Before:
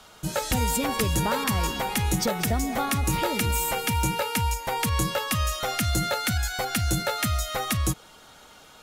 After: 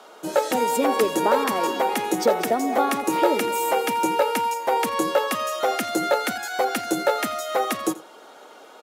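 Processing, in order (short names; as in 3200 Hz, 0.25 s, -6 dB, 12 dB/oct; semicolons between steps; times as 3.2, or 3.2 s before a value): HPF 330 Hz 24 dB/oct; tilt shelf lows +8 dB, about 1200 Hz; on a send: echo 85 ms -19 dB; on the sum: gain +4.5 dB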